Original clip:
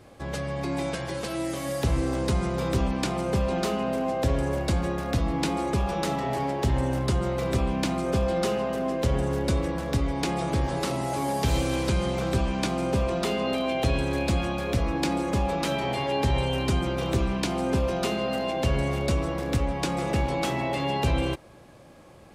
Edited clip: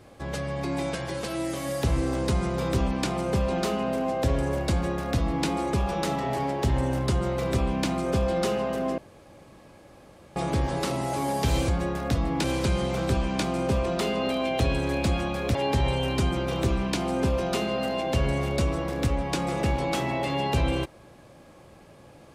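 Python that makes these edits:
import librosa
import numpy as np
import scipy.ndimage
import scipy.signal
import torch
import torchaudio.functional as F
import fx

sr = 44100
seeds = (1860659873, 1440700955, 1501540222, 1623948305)

y = fx.edit(x, sr, fx.duplicate(start_s=4.71, length_s=0.76, to_s=11.68),
    fx.room_tone_fill(start_s=8.98, length_s=1.38),
    fx.cut(start_s=14.79, length_s=1.26), tone=tone)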